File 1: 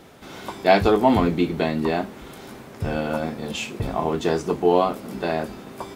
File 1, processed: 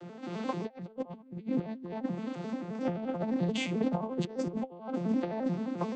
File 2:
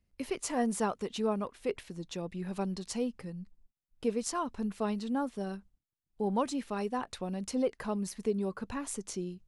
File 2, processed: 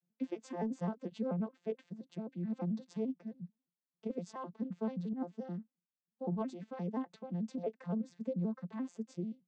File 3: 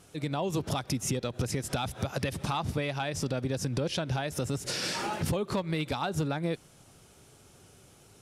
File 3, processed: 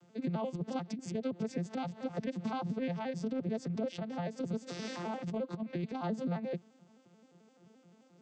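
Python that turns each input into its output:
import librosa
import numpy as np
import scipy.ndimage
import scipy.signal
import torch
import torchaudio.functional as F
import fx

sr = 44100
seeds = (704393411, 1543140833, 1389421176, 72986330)

y = fx.vocoder_arp(x, sr, chord='major triad', root=53, every_ms=87)
y = fx.dynamic_eq(y, sr, hz=1400.0, q=5.8, threshold_db=-58.0, ratio=4.0, max_db=-4)
y = fx.over_compress(y, sr, threshold_db=-30.0, ratio=-0.5)
y = y * librosa.db_to_amplitude(-3.0)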